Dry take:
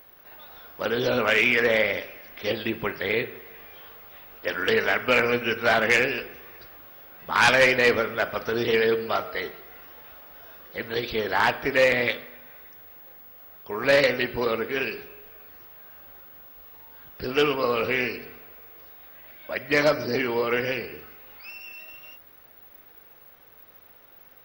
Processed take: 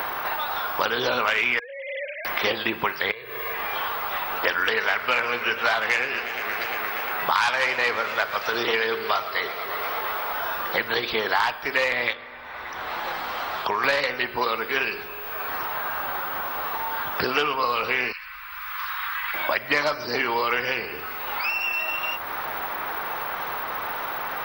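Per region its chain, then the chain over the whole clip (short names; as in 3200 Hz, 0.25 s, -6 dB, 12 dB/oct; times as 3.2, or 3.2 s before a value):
1.59–2.25 sine-wave speech + compressor 10:1, threshold -35 dBFS
3.11–3.54 compressor 16:1, threshold -38 dBFS + comb 1.8 ms, depth 80%
4.69–10.33 HPF 230 Hz 6 dB/oct + warbling echo 0.117 s, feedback 76%, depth 205 cents, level -16.5 dB
12.13–13.84 air absorption 65 m + compressor 2:1, threshold -36 dBFS
18.12–19.34 inverse Chebyshev band-stop 100–620 Hz + high shelf 4700 Hz -9 dB
whole clip: graphic EQ 125/250/500/1000/4000 Hz -6/-6/-5/+9/+4 dB; three-band squash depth 100%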